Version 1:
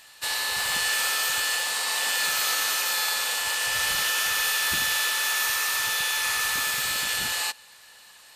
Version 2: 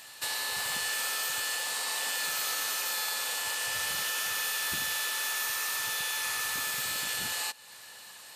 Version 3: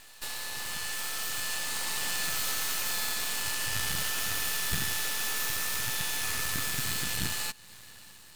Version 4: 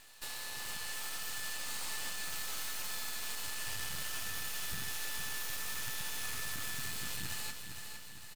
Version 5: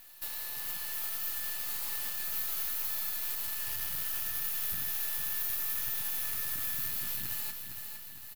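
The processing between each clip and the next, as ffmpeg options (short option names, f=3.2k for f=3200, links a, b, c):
-af "highpass=83,equalizer=f=2.3k:w=0.36:g=-3.5,acompressor=threshold=-41dB:ratio=2,volume=4.5dB"
-af "asubboost=boost=8.5:cutoff=200,aeval=exprs='max(val(0),0)':c=same,dynaudnorm=f=540:g=5:m=5dB"
-af "alimiter=limit=-22.5dB:level=0:latency=1:release=71,aecho=1:1:460|920|1380|1840|2300|2760:0.422|0.215|0.11|0.0559|0.0285|0.0145,volume=-5.5dB"
-af "aexciter=amount=6.5:drive=2.8:freq=11k,volume=-2dB"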